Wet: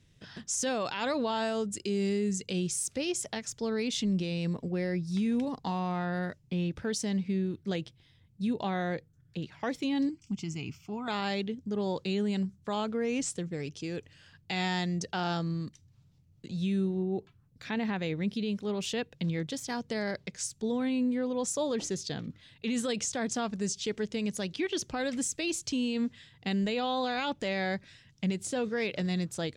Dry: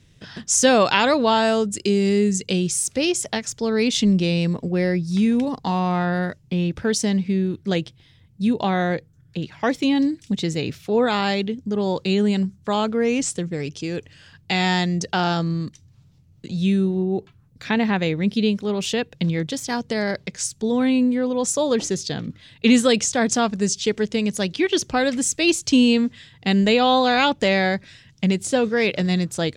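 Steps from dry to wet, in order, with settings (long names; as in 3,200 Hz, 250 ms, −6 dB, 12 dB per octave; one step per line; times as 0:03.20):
brickwall limiter −13.5 dBFS, peak gain reduction 11 dB
0:10.09–0:11.08: phaser with its sweep stopped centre 2,600 Hz, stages 8
level −9 dB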